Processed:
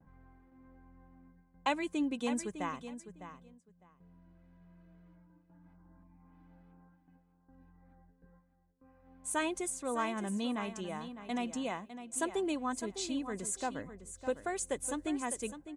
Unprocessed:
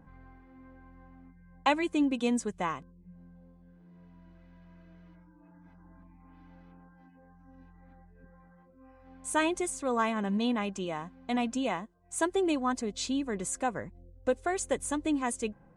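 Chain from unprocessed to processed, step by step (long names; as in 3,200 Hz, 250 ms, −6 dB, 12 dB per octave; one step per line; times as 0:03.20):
noise gate with hold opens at −48 dBFS
high-shelf EQ 9,900 Hz +11 dB
repeating echo 605 ms, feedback 18%, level −11 dB
one half of a high-frequency compander decoder only
level −6 dB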